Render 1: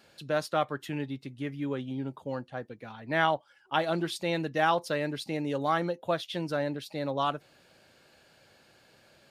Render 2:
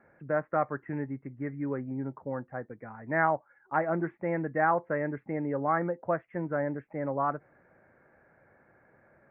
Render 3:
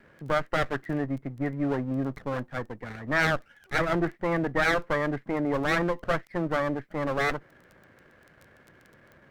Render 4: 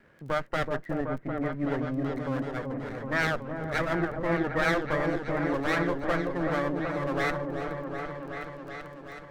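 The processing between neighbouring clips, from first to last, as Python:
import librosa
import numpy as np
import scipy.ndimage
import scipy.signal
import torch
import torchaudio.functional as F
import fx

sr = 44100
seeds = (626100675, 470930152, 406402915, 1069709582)

y1 = scipy.signal.sosfilt(scipy.signal.butter(12, 2100.0, 'lowpass', fs=sr, output='sos'), x)
y2 = fx.lower_of_two(y1, sr, delay_ms=0.52)
y2 = fx.dmg_crackle(y2, sr, seeds[0], per_s=11.0, level_db=-45.0)
y2 = fx.fold_sine(y2, sr, drive_db=3, ceiling_db=-16.0)
y3 = fx.echo_opening(y2, sr, ms=377, hz=750, octaves=1, feedback_pct=70, wet_db=-3)
y3 = y3 * 10.0 ** (-3.0 / 20.0)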